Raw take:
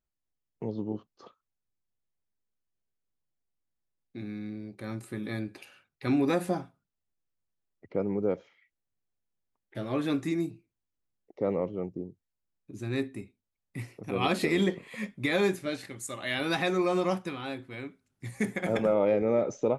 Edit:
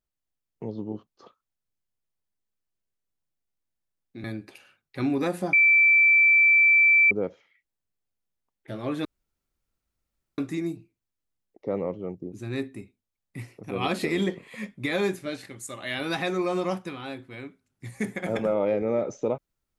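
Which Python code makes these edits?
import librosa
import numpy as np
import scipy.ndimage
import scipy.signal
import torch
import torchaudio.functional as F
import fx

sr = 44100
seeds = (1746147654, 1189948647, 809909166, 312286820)

y = fx.edit(x, sr, fx.cut(start_s=4.24, length_s=1.07),
    fx.bleep(start_s=6.6, length_s=1.58, hz=2330.0, db=-14.5),
    fx.insert_room_tone(at_s=10.12, length_s=1.33),
    fx.cut(start_s=12.06, length_s=0.66), tone=tone)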